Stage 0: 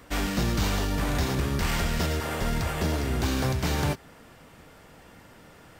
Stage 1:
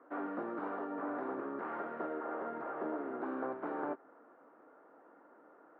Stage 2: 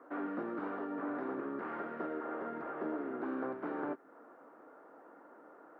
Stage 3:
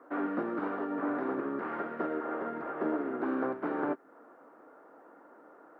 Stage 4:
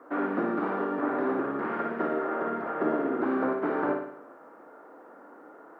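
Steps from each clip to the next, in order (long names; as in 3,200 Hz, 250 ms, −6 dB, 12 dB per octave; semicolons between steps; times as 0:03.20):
elliptic band-pass filter 290–1,400 Hz, stop band 80 dB; level −6 dB
dynamic equaliser 780 Hz, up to −7 dB, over −53 dBFS, Q 0.74; level +4 dB
expander for the loud parts 1.5 to 1, over −47 dBFS; level +7 dB
flutter between parallel walls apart 9.7 metres, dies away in 0.67 s; level +4 dB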